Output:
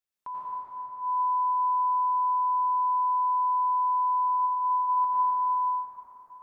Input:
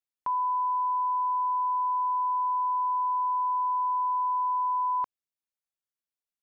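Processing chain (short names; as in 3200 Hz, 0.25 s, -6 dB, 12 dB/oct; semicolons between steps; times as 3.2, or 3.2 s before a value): 4.28–4.71 Chebyshev low-pass 980 Hz, order 6; limiter -32.5 dBFS, peak gain reduction 8.5 dB; reverb RT60 5.0 s, pre-delay 78 ms, DRR -8.5 dB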